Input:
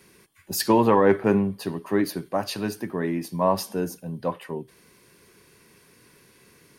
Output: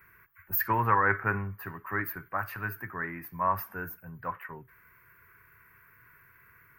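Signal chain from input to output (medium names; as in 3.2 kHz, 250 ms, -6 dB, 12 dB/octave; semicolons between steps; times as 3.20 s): FFT filter 110 Hz 0 dB, 200 Hz -17 dB, 590 Hz -15 dB, 890 Hz -6 dB, 1.4 kHz +8 dB, 2.2 kHz -1 dB, 3.6 kHz -26 dB, 6.9 kHz -23 dB, 9.9 kHz -22 dB, 15 kHz +10 dB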